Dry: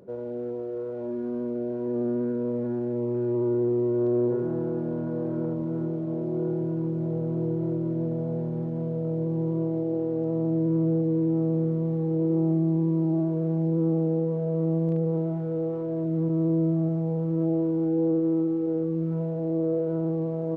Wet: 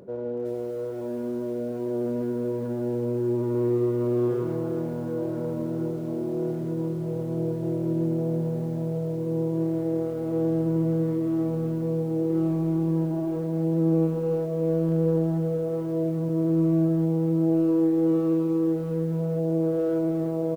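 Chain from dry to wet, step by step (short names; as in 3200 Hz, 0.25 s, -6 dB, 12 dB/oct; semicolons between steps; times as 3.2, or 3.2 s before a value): reverse; upward compressor, threshold -27 dBFS; reverse; speakerphone echo 0.16 s, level -6 dB; lo-fi delay 0.374 s, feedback 35%, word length 8-bit, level -9.5 dB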